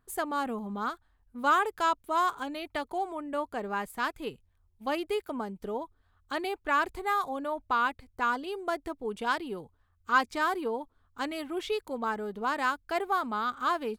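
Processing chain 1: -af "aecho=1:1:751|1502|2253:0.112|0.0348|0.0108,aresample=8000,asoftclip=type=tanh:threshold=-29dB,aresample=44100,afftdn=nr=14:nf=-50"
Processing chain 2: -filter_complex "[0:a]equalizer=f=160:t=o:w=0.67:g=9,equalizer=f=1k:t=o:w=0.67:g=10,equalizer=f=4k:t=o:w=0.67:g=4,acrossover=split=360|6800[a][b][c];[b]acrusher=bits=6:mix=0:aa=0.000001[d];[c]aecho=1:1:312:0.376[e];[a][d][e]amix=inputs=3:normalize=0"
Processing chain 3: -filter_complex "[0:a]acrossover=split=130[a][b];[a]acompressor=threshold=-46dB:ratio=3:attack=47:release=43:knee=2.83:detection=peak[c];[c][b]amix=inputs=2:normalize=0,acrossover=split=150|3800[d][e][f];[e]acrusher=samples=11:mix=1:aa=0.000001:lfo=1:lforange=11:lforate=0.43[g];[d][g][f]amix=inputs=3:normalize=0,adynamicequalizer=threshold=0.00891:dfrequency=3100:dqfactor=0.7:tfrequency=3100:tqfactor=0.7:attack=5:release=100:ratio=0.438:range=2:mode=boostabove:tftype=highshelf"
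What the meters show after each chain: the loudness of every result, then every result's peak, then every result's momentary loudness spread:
-36.0, -25.0, -30.0 LUFS; -25.5, -5.5, -7.5 dBFS; 7, 13, 11 LU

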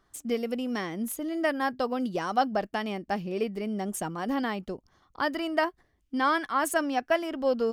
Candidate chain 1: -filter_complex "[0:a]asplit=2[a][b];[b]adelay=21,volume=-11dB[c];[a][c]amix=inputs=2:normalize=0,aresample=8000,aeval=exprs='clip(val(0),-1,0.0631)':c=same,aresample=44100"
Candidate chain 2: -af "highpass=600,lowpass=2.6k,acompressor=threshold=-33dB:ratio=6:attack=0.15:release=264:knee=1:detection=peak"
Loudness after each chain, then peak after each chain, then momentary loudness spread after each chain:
-30.0, -42.5 LUFS; -10.5, -29.5 dBFS; 6, 5 LU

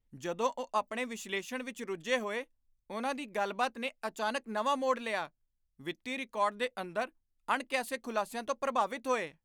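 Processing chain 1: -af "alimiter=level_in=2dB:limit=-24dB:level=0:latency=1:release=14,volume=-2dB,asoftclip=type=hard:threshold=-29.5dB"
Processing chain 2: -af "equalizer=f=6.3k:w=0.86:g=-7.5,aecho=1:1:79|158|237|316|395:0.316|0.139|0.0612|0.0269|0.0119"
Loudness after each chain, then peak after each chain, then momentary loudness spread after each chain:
-38.5, -35.0 LUFS; -29.5, -17.0 dBFS; 5, 9 LU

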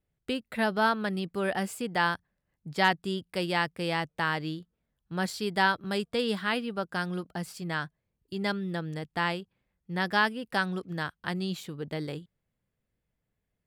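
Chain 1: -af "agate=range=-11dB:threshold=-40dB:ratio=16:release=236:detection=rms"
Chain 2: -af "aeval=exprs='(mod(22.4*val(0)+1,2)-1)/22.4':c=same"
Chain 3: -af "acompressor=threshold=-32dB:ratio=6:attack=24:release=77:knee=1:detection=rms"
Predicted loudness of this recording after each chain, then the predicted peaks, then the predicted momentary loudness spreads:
-30.5, -33.5, -35.5 LUFS; -10.5, -27.0, -16.5 dBFS; 12, 7, 6 LU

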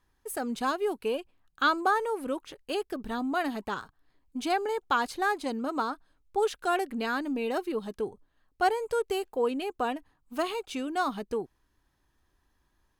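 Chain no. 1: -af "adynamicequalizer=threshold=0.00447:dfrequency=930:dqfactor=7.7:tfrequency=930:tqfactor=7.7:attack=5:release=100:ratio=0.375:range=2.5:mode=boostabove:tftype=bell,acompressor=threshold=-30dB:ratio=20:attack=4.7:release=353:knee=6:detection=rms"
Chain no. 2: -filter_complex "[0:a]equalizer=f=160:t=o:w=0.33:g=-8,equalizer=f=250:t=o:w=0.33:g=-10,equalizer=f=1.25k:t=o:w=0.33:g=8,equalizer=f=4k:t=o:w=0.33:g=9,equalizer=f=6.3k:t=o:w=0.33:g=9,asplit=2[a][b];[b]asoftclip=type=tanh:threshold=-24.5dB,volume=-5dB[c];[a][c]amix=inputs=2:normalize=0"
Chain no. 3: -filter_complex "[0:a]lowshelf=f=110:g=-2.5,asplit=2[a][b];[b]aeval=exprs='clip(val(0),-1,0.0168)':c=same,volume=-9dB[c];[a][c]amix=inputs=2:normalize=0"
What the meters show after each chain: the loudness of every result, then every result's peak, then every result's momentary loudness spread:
-38.0, -26.5, -29.0 LUFS; -22.0, -8.0, -11.5 dBFS; 6, 11, 9 LU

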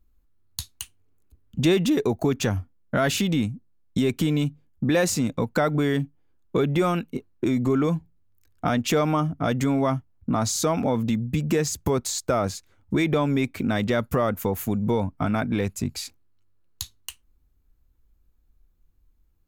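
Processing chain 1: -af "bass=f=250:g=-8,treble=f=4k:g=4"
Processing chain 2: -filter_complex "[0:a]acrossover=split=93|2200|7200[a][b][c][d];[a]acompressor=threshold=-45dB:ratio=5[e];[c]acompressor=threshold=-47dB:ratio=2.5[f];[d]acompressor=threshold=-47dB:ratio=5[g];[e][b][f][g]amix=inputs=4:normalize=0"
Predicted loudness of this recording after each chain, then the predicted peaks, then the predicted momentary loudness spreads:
-26.5, -25.0 LUFS; -8.5, -9.0 dBFS; 11, 10 LU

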